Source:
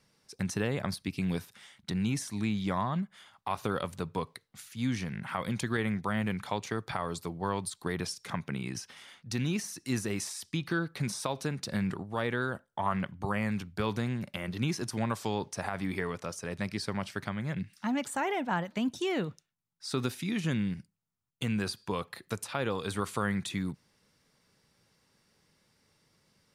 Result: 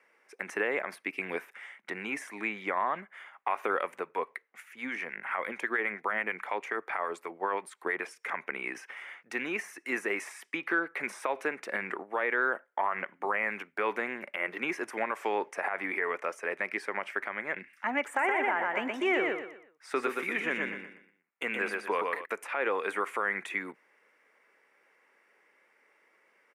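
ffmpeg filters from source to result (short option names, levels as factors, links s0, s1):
-filter_complex "[0:a]asettb=1/sr,asplit=3[s0][s1][s2];[s0]atrim=end=4.004[s3];[s1]atrim=start=4:end=8.26,asetpts=PTS-STARTPTS,afade=t=in:d=0.004:c=qsin,afade=t=out:st=4.256:d=0.004:c=qsin,acrossover=split=1000[s4][s5];[s4]aeval=exprs='val(0)*(1-0.5/2+0.5/2*cos(2*PI*9.3*n/s))':c=same[s6];[s5]aeval=exprs='val(0)*(1-0.5/2-0.5/2*cos(2*PI*9.3*n/s))':c=same[s7];[s6][s7]amix=inputs=2:normalize=0[s8];[s2]atrim=start=8.256[s9];[s3][s8]acrossfade=d=0.004:c1=hsin:c2=qsin[s10];[s10][s9]acrossfade=d=0.004:c1=qsin:c2=hsin,asplit=3[s11][s12][s13];[s11]afade=t=out:st=18.14:d=0.02[s14];[s12]aecho=1:1:121|242|363|484:0.631|0.208|0.0687|0.0227,afade=t=in:st=18.14:d=0.02,afade=t=out:st=22.24:d=0.02[s15];[s13]afade=t=in:st=22.24:d=0.02[s16];[s14][s15][s16]amix=inputs=3:normalize=0,highpass=f=360:w=0.5412,highpass=f=360:w=1.3066,highshelf=f=3000:t=q:w=3:g=-12,alimiter=limit=0.075:level=0:latency=1:release=78,volume=1.68"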